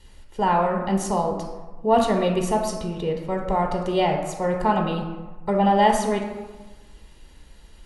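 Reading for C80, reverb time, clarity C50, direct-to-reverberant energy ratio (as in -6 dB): 7.0 dB, 1.3 s, 5.0 dB, 1.5 dB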